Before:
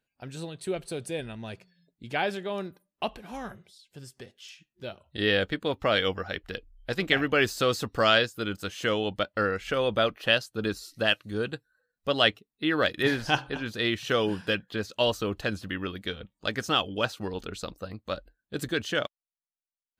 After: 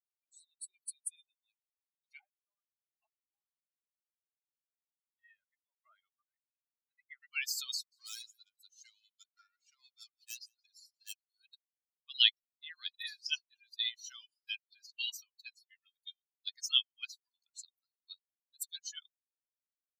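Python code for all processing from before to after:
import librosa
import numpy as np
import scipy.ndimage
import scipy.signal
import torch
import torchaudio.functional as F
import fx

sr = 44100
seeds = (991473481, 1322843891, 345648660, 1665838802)

y = fx.chain(x, sr, fx.lowpass(hz=1200.0, slope=12),
    fx.comb(ms=1.5, depth=0.49), at=(2.19, 7.23))
y = fx.chain(y, sr, fx.high_shelf(hz=10000.0, db=-5.0),
    fx.tube_stage(drive_db=25.0, bias=0.4),
    fx.echo_single(ms=177, db=-12.0), at=(7.74, 11.24))
y = fx.bin_expand(y, sr, power=3.0)
y = scipy.signal.sosfilt(scipy.signal.cheby2(4, 80, 530.0, 'highpass', fs=sr, output='sos'), y)
y = y * 10.0 ** (7.0 / 20.0)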